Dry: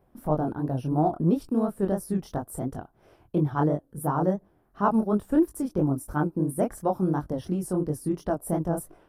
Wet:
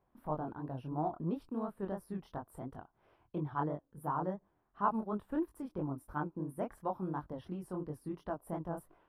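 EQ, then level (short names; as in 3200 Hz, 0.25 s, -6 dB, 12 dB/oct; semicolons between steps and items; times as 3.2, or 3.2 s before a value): air absorption 480 m; pre-emphasis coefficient 0.9; bell 1000 Hz +6.5 dB 0.53 oct; +6.5 dB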